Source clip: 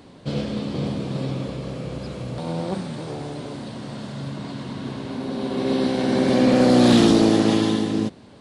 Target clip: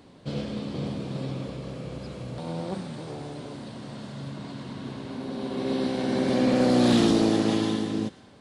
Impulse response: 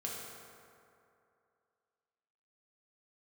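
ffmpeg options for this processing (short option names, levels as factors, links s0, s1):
-filter_complex "[0:a]asplit=2[s0][s1];[s1]highpass=1200[s2];[1:a]atrim=start_sample=2205,adelay=111[s3];[s2][s3]afir=irnorm=-1:irlink=0,volume=0.2[s4];[s0][s4]amix=inputs=2:normalize=0,volume=0.531"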